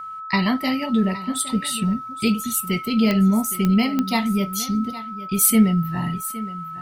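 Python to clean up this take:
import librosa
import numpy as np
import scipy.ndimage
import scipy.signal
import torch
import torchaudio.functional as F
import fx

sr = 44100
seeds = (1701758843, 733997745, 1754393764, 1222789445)

y = fx.fix_declip(x, sr, threshold_db=-6.0)
y = fx.fix_declick_ar(y, sr, threshold=10.0)
y = fx.notch(y, sr, hz=1300.0, q=30.0)
y = fx.fix_echo_inverse(y, sr, delay_ms=815, level_db=-15.5)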